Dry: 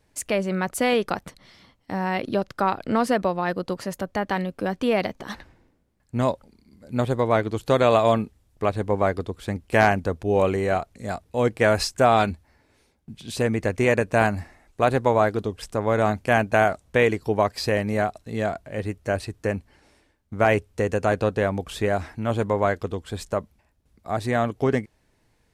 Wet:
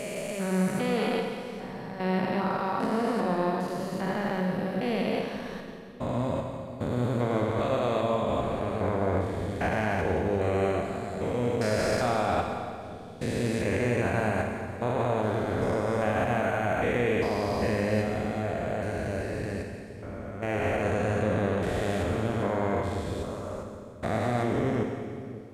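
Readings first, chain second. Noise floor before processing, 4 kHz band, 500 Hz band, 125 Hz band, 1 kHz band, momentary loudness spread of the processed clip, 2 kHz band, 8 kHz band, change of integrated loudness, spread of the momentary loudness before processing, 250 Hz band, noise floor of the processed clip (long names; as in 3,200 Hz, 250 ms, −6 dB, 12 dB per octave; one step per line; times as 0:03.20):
−66 dBFS, −6.0 dB, −5.0 dB, −2.5 dB, −6.0 dB, 10 LU, −6.0 dB, −6.0 dB, −5.0 dB, 11 LU, −2.5 dB, −40 dBFS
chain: spectrum averaged block by block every 400 ms
brickwall limiter −19 dBFS, peak gain reduction 10.5 dB
on a send: echo with a time of its own for lows and highs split 500 Hz, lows 551 ms, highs 174 ms, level −13 dB
on the sum: four-comb reverb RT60 1.8 s, combs from 33 ms, DRR 3 dB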